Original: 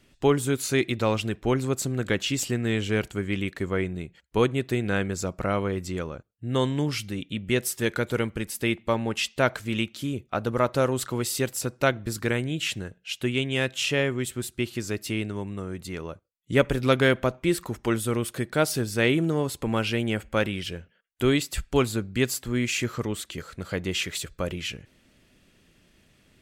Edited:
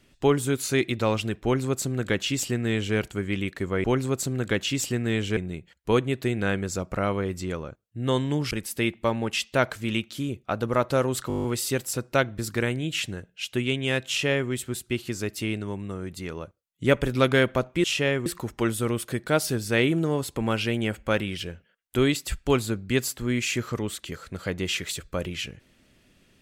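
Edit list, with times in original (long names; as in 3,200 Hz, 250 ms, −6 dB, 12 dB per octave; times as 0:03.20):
0:01.43–0:02.96: duplicate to 0:03.84
0:06.98–0:08.35: remove
0:11.12: stutter 0.02 s, 9 plays
0:13.76–0:14.18: duplicate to 0:17.52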